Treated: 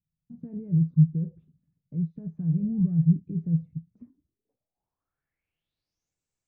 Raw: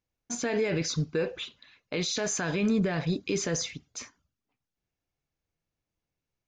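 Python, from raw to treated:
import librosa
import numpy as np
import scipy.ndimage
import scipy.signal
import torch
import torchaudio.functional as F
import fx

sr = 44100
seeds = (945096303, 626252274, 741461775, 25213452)

y = fx.spec_paint(x, sr, seeds[0], shape='rise', start_s=2.57, length_s=0.48, low_hz=440.0, high_hz=1900.0, level_db=-38.0)
y = fx.filter_sweep_lowpass(y, sr, from_hz=160.0, to_hz=7800.0, start_s=3.82, end_s=6.16, q=6.9)
y = F.gain(torch.from_numpy(y), -4.0).numpy()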